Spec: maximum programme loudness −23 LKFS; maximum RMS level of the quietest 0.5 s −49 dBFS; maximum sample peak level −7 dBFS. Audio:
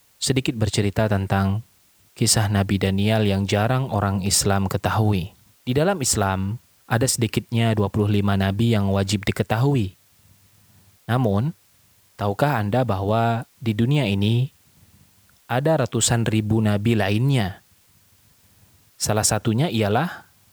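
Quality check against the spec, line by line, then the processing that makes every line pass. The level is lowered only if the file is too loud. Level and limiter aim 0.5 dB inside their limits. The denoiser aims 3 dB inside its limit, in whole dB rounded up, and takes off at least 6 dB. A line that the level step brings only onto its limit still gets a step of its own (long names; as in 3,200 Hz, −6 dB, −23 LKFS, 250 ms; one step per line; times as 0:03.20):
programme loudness −21.5 LKFS: out of spec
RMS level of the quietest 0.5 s −58 dBFS: in spec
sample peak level −3.5 dBFS: out of spec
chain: level −2 dB
brickwall limiter −7.5 dBFS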